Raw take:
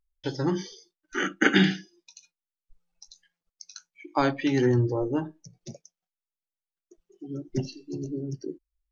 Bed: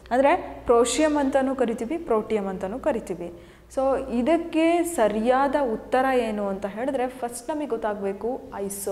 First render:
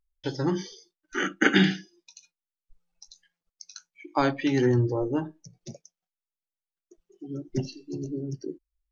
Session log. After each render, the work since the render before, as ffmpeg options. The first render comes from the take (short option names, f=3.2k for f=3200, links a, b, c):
-af anull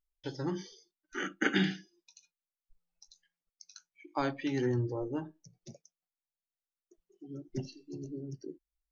-af "volume=-8.5dB"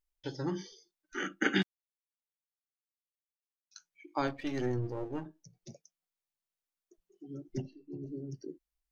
-filter_complex "[0:a]asplit=3[a][b][c];[a]afade=t=out:st=1.61:d=0.02[d];[b]acrusher=bits=2:mix=0:aa=0.5,afade=t=in:st=1.61:d=0.02,afade=t=out:st=3.71:d=0.02[e];[c]afade=t=in:st=3.71:d=0.02[f];[d][e][f]amix=inputs=3:normalize=0,asettb=1/sr,asplit=3[g][h][i];[g]atrim=end=4.274[j];[h]atrim=start=4.27:end=5.26,asetpts=PTS-STARTPTS,afade=t=in:d=0.004:c=qsin,afade=t=out:st=0.986:d=0.004:c=qsin,aeval=exprs='if(lt(val(0),0),0.447*val(0),val(0))':c=same[k];[i]atrim=start=5.256[l];[j][k]acrossfade=d=0.004:c1=hsin:c2=qsin[m];[m][l]acrossfade=d=0.004:c1=qsin:c2=hsin,asplit=3[n][o][p];[n]afade=t=out:st=7.61:d=0.02[q];[o]lowpass=1.6k,afade=t=in:st=7.61:d=0.02,afade=t=out:st=8.06:d=0.02[r];[p]afade=t=in:st=8.06:d=0.02[s];[q][r][s]amix=inputs=3:normalize=0"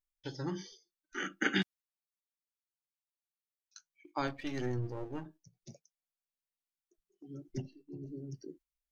-af "agate=range=-7dB:threshold=-54dB:ratio=16:detection=peak,equalizer=f=440:w=0.52:g=-4"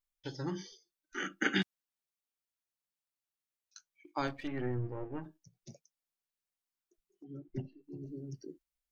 -filter_complex "[0:a]asplit=3[a][b][c];[a]afade=t=out:st=4.46:d=0.02[d];[b]lowpass=f=2.5k:w=0.5412,lowpass=f=2.5k:w=1.3066,afade=t=in:st=4.46:d=0.02,afade=t=out:st=5.22:d=0.02[e];[c]afade=t=in:st=5.22:d=0.02[f];[d][e][f]amix=inputs=3:normalize=0,asettb=1/sr,asplit=3[g][h][i];[g]atrim=end=7.244[j];[h]atrim=start=7.24:end=7.84,asetpts=PTS-STARTPTS,afade=t=in:d=0.004:c=qsin,afade=t=out:st=0.596:d=0.004:c=qsin,lowpass=2.4k[k];[i]atrim=start=7.836[l];[j][k]acrossfade=d=0.004:c1=hsin:c2=qsin[m];[m][l]acrossfade=d=0.004:c1=qsin:c2=hsin"